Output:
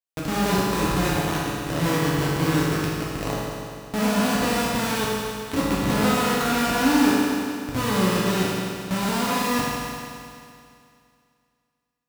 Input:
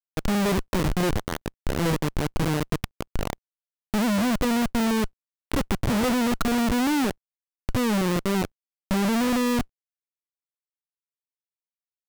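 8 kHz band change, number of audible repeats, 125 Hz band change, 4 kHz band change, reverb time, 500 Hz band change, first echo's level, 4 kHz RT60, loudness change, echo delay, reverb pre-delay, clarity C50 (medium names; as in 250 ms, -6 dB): +5.0 dB, no echo, +2.5 dB, +5.0 dB, 2.4 s, +2.5 dB, no echo, 2.4 s, +2.0 dB, no echo, 7 ms, -2.5 dB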